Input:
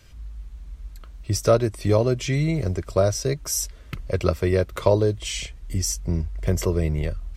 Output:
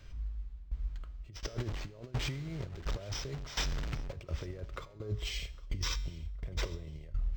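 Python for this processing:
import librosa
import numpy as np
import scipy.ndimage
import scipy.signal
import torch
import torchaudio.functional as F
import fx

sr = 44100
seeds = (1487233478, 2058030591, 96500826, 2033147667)

y = fx.delta_mod(x, sr, bps=64000, step_db=-27.0, at=(1.45, 4.16))
y = fx.low_shelf(y, sr, hz=71.0, db=8.5)
y = fx.over_compress(y, sr, threshold_db=-24.0, ratio=-0.5)
y = fx.comb_fb(y, sr, f0_hz=140.0, decay_s=1.0, harmonics='all', damping=0.0, mix_pct=60)
y = fx.tremolo_shape(y, sr, shape='saw_down', hz=1.4, depth_pct=85)
y = fx.echo_feedback(y, sr, ms=807, feedback_pct=39, wet_db=-20.5)
y = np.interp(np.arange(len(y)), np.arange(len(y))[::4], y[::4])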